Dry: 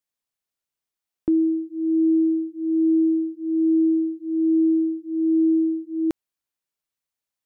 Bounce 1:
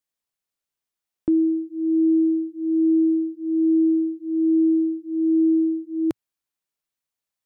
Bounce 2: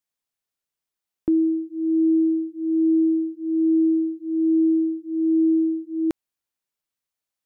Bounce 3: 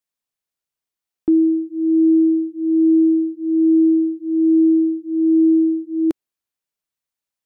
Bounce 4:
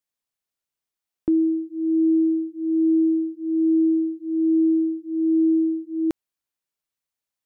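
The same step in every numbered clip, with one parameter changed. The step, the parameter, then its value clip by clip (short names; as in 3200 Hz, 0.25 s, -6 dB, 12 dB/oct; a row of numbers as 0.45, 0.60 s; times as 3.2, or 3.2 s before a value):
dynamic EQ, frequency: 120, 2200, 320, 9400 Hz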